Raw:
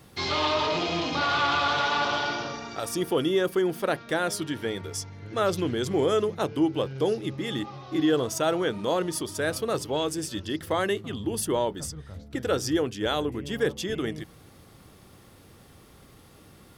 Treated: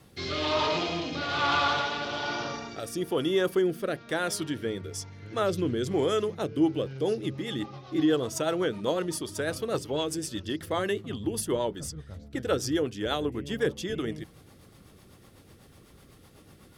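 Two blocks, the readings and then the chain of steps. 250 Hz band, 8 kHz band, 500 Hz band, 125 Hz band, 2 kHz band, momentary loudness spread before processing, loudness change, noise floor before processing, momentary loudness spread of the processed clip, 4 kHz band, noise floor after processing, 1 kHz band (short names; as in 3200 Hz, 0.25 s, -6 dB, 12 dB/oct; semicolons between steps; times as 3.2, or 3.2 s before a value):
-1.0 dB, -2.5 dB, -2.0 dB, -1.5 dB, -3.0 dB, 9 LU, -2.0 dB, -53 dBFS, 10 LU, -2.5 dB, -55 dBFS, -3.5 dB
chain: rotary speaker horn 1.1 Hz, later 8 Hz, at 6.36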